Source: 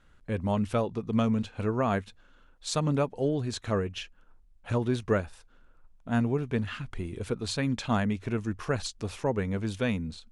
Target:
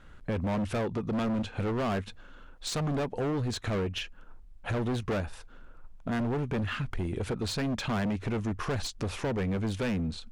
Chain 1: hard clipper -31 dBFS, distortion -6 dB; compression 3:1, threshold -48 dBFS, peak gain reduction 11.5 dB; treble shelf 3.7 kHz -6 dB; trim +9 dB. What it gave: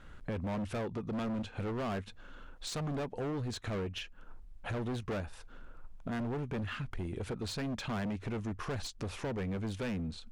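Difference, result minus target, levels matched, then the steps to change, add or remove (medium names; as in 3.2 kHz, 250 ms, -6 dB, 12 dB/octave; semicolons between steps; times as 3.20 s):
compression: peak gain reduction +6 dB
change: compression 3:1, threshold -39 dBFS, peak gain reduction 5.5 dB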